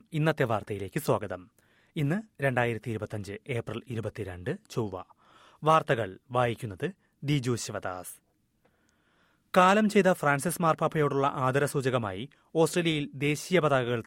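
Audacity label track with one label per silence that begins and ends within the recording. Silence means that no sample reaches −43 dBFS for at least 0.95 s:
8.150000	9.540000	silence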